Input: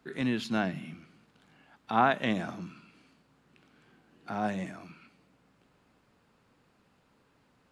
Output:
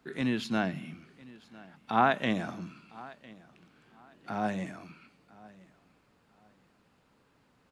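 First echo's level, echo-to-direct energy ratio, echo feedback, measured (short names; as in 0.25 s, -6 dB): -21.5 dB, -21.0 dB, 25%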